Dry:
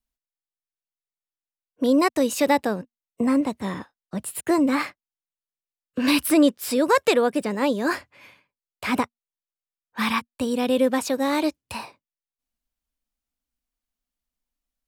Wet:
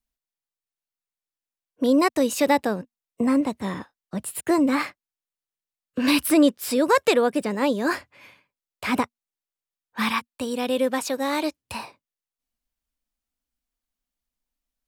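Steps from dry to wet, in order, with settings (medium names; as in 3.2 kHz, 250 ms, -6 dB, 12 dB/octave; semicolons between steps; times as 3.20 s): 10.09–11.59 s: bass shelf 360 Hz -6.5 dB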